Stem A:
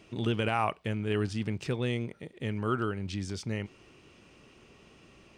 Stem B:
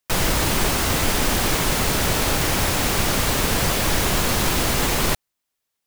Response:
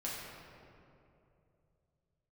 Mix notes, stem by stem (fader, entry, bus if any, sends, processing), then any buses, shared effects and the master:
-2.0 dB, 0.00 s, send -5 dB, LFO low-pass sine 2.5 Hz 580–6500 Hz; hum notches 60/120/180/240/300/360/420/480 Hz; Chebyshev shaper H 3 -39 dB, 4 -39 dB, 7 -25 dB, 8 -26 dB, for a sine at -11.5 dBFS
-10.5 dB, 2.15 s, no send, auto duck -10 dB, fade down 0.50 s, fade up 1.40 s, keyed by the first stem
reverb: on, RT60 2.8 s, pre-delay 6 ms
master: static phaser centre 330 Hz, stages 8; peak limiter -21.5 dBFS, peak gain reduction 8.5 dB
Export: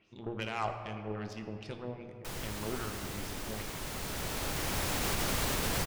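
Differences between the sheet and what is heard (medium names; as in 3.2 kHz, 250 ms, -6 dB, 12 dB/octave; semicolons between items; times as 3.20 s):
stem A -2.0 dB -> -11.0 dB; master: missing static phaser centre 330 Hz, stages 8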